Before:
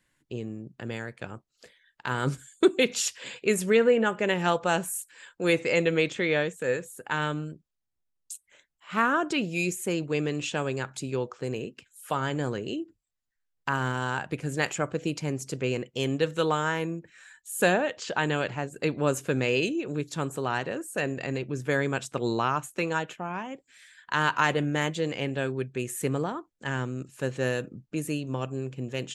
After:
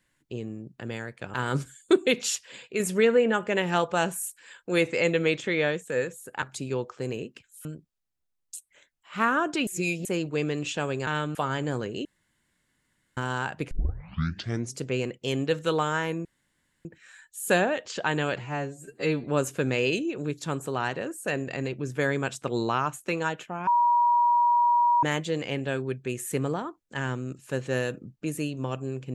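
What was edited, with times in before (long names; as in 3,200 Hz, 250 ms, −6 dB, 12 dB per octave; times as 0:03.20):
0:01.34–0:02.06: remove
0:03.07–0:03.52: clip gain −5 dB
0:07.14–0:07.42: swap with 0:10.84–0:12.07
0:09.44–0:09.82: reverse
0:12.77–0:13.89: fill with room tone
0:14.43: tape start 1.04 s
0:16.97: splice in room tone 0.60 s
0:18.52–0:18.94: time-stretch 2×
0:23.37–0:24.73: beep over 958 Hz −18 dBFS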